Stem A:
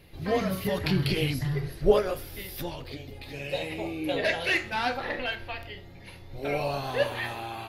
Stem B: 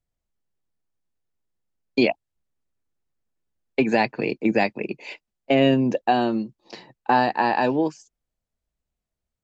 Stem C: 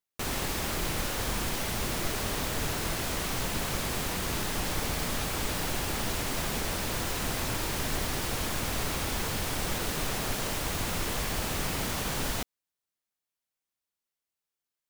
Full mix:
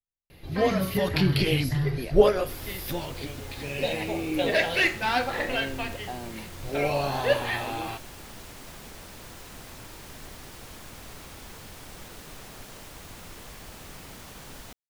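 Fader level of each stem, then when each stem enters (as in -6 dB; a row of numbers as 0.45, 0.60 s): +3.0, -18.5, -12.5 dB; 0.30, 0.00, 2.30 s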